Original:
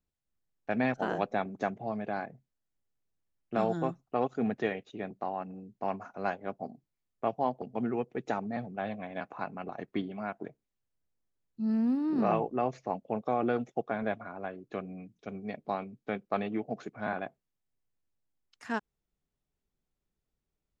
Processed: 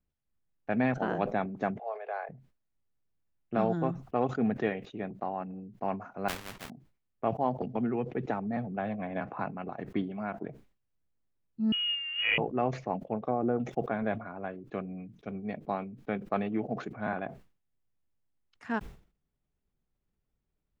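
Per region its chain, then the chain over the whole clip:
0:01.79–0:02.29: Butterworth high-pass 420 Hz 72 dB per octave + high-frequency loss of the air 180 metres
0:06.28–0:06.70: each half-wave held at its own peak + every bin compressed towards the loudest bin 4 to 1
0:07.58–0:09.47: high-frequency loss of the air 77 metres + multiband upward and downward compressor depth 70%
0:11.72–0:12.38: parametric band 410 Hz −14.5 dB 0.29 octaves + voice inversion scrambler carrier 3,100 Hz + multiband upward and downward expander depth 70%
0:13.05–0:13.60: treble cut that deepens with the level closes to 960 Hz, closed at −26.5 dBFS + expander for the loud parts, over −47 dBFS
whole clip: bass and treble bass +4 dB, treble −11 dB; level that may fall only so fast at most 130 dB per second

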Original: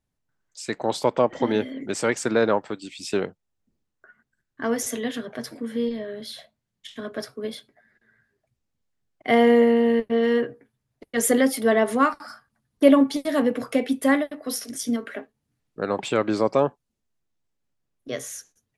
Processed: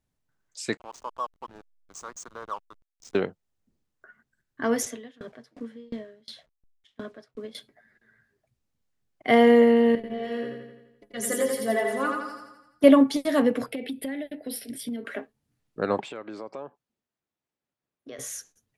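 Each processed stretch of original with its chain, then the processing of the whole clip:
0:00.77–0:03.15: pair of resonant band-passes 2,700 Hz, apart 2.5 octaves + slack as between gear wheels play −38 dBFS
0:04.85–0:07.55: hold until the input has moved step −50 dBFS + high-frequency loss of the air 67 metres + tremolo with a ramp in dB decaying 2.8 Hz, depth 29 dB
0:09.95–0:12.84: stiff-string resonator 62 Hz, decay 0.29 s, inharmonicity 0.03 + repeating echo 85 ms, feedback 55%, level −3.5 dB
0:13.66–0:15.05: phaser with its sweep stopped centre 2,800 Hz, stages 4 + downward compressor 12 to 1, threshold −28 dBFS
0:16.00–0:18.19: high-pass filter 290 Hz 6 dB per octave + high-shelf EQ 4,600 Hz −10.5 dB + downward compressor 3 to 1, threshold −39 dBFS
whole clip: no processing

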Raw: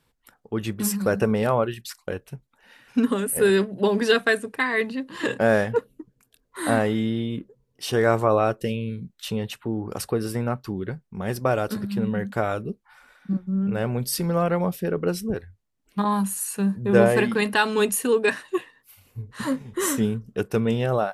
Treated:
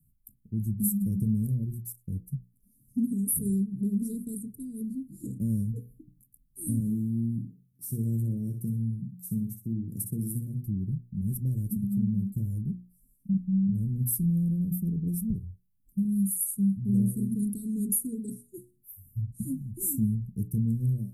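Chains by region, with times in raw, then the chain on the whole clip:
0:06.80–0:10.63: high-pass filter 130 Hz + repeating echo 61 ms, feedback 25%, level −8 dB
whole clip: inverse Chebyshev band-stop filter 840–2,900 Hz, stop band 80 dB; mains-hum notches 60/120/180/240/300/360/420/480 Hz; downward compressor 1.5 to 1, threshold −35 dBFS; level +6 dB

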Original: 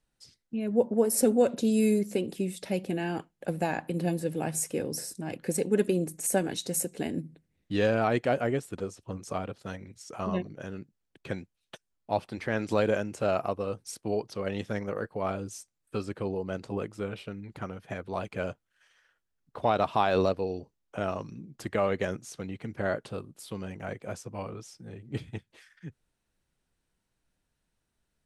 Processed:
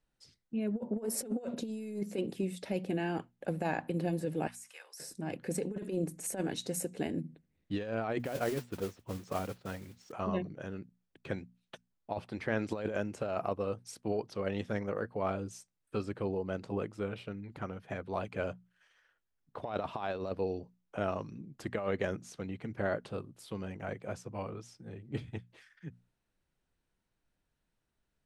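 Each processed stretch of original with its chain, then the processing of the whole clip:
0:04.47–0:05.00: inverse Chebyshev high-pass filter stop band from 170 Hz, stop band 80 dB + downward compressor 3 to 1, threshold −41 dBFS
0:08.19–0:10.12: low-pass filter 4,400 Hz + noise that follows the level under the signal 11 dB
whole clip: high-shelf EQ 5,300 Hz −8 dB; mains-hum notches 60/120/180/240 Hz; compressor whose output falls as the input rises −28 dBFS, ratio −0.5; level −4 dB

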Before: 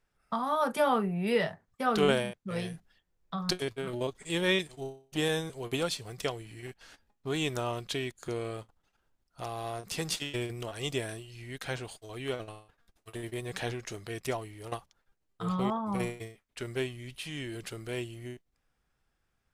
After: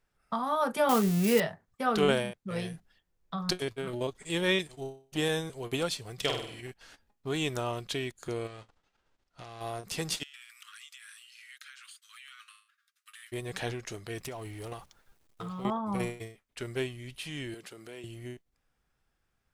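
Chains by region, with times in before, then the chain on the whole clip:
0:00.89–0:01.40: spike at every zero crossing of −21.5 dBFS + low-shelf EQ 330 Hz +7 dB
0:06.16–0:06.61: parametric band 3,300 Hz +7.5 dB 0.88 octaves + flutter between parallel walls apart 8.3 metres, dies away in 0.6 s
0:08.46–0:09.60: spectral envelope flattened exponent 0.6 + downward compressor 5 to 1, threshold −41 dBFS + high-frequency loss of the air 100 metres
0:10.23–0:13.32: Butterworth high-pass 1,200 Hz 72 dB per octave + downward compressor 16 to 1, threshold −45 dBFS
0:14.17–0:15.65: mu-law and A-law mismatch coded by mu + downward compressor, threshold −36 dBFS
0:17.54–0:18.04: high-pass filter 210 Hz + downward compressor 2.5 to 1, threshold −45 dBFS
whole clip: no processing

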